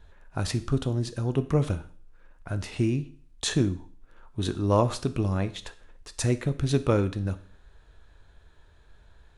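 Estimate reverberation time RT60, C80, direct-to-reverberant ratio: 0.50 s, 20.0 dB, 11.0 dB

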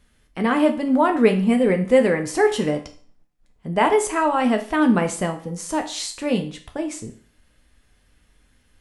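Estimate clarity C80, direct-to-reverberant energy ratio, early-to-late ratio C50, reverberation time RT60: 16.5 dB, 5.0 dB, 12.0 dB, 0.45 s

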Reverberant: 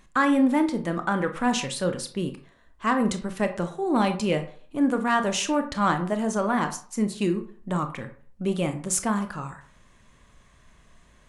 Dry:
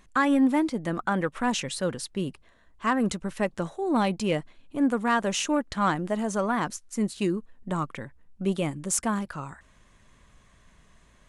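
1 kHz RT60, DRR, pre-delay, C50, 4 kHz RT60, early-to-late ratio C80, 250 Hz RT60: 0.45 s, 7.0 dB, 23 ms, 12.0 dB, 0.30 s, 16.0 dB, 0.40 s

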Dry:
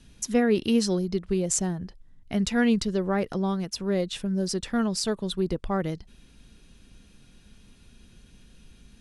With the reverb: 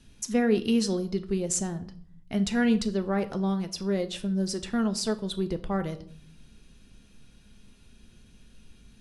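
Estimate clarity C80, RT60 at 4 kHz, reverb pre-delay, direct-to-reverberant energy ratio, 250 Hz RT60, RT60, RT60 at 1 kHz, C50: 19.5 dB, 0.40 s, 5 ms, 9.0 dB, 0.90 s, 0.55 s, 0.50 s, 15.5 dB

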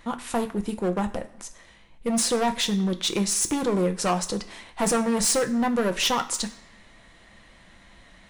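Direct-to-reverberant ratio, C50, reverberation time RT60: 6.0 dB, 14.5 dB, 0.85 s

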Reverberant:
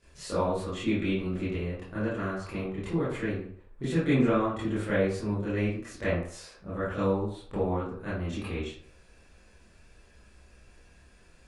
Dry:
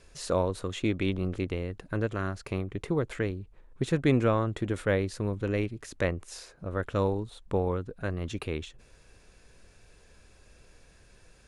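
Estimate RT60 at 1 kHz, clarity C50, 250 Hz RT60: 0.55 s, 1.5 dB, 0.50 s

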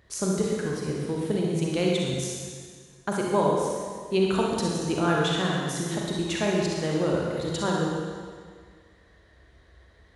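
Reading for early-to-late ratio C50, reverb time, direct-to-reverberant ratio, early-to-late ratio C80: -1.5 dB, 1.8 s, -2.5 dB, 1.0 dB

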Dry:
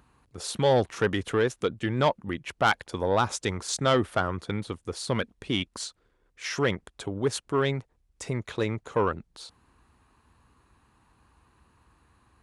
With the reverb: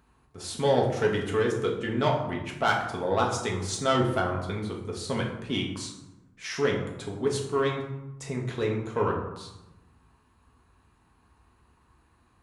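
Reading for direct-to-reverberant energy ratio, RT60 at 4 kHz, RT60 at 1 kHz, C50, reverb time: -1.0 dB, 0.55 s, 0.95 s, 5.5 dB, 0.95 s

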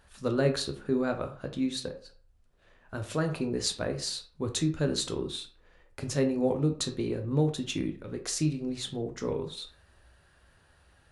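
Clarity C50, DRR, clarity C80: 11.0 dB, 5.0 dB, 15.5 dB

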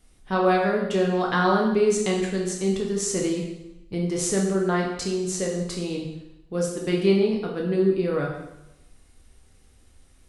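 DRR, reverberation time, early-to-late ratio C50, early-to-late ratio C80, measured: -1.0 dB, 0.90 s, 4.0 dB, 6.5 dB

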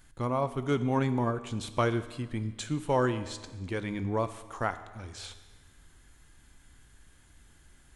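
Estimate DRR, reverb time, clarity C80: 11.0 dB, 1.4 s, 14.0 dB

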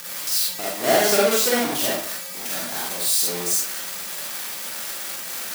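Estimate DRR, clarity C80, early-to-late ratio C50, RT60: -5.5 dB, 4.5 dB, 0.0 dB, 0.50 s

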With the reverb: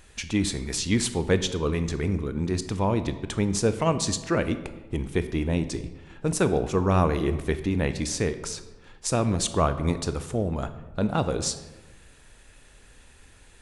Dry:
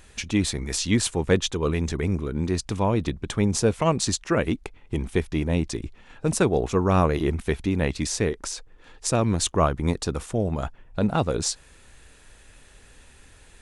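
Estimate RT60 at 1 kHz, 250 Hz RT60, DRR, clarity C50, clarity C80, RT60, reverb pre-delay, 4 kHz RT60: 1.1 s, 1.4 s, 10.5 dB, 12.0 dB, 14.0 dB, 1.2 s, 22 ms, 0.70 s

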